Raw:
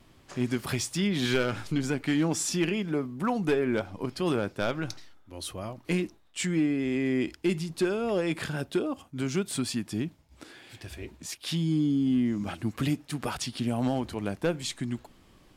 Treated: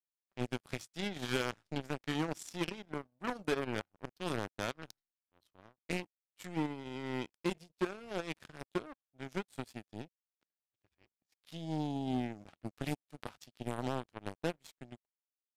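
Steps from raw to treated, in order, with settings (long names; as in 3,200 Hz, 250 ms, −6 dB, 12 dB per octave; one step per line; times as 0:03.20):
low-pass that shuts in the quiet parts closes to 2,900 Hz, open at −25.5 dBFS
power curve on the samples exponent 3
downsampling to 32,000 Hz
level −3 dB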